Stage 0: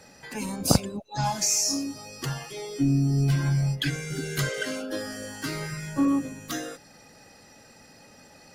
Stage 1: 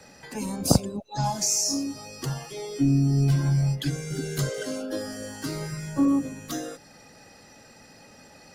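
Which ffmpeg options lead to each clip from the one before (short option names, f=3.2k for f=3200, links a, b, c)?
-filter_complex "[0:a]highshelf=f=9.5k:g=-3.5,acrossover=split=270|1100|4000[a][b][c][d];[c]acompressor=threshold=-49dB:ratio=6[e];[a][b][e][d]amix=inputs=4:normalize=0,volume=1.5dB"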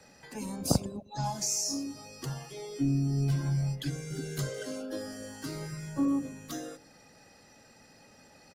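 -filter_complex "[0:a]asplit=2[a][b];[b]adelay=103,lowpass=f=810:p=1,volume=-19dB,asplit=2[c][d];[d]adelay=103,lowpass=f=810:p=1,volume=0.41,asplit=2[e][f];[f]adelay=103,lowpass=f=810:p=1,volume=0.41[g];[a][c][e][g]amix=inputs=4:normalize=0,volume=-6.5dB"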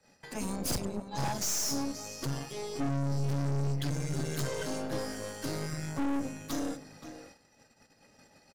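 -filter_complex "[0:a]asplit=2[a][b];[b]adelay=524.8,volume=-10dB,highshelf=f=4k:g=-11.8[c];[a][c]amix=inputs=2:normalize=0,aeval=exprs='(tanh(70.8*val(0)+0.8)-tanh(0.8))/70.8':c=same,agate=range=-16dB:threshold=-60dB:ratio=16:detection=peak,volume=7.5dB"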